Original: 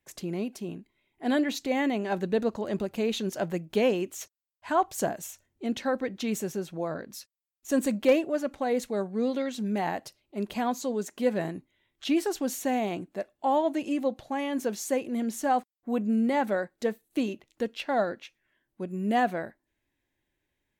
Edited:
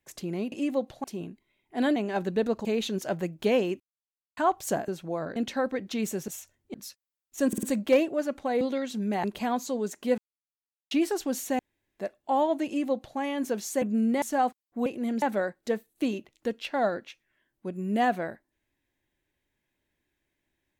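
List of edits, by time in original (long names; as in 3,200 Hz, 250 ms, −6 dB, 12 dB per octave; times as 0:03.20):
0:01.44–0:01.92: remove
0:02.61–0:02.96: remove
0:04.11–0:04.68: silence
0:05.19–0:05.65: swap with 0:06.57–0:07.05
0:07.79: stutter 0.05 s, 4 plays
0:08.77–0:09.25: remove
0:09.88–0:10.39: remove
0:11.33–0:12.06: silence
0:12.74–0:13.14: fill with room tone
0:13.81–0:14.33: duplicate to 0:00.52
0:14.97–0:15.33: swap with 0:15.97–0:16.37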